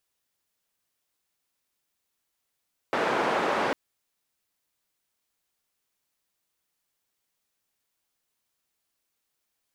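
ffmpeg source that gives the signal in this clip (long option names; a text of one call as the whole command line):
ffmpeg -f lavfi -i "anoisesrc=color=white:duration=0.8:sample_rate=44100:seed=1,highpass=frequency=280,lowpass=frequency=1100,volume=-7.4dB" out.wav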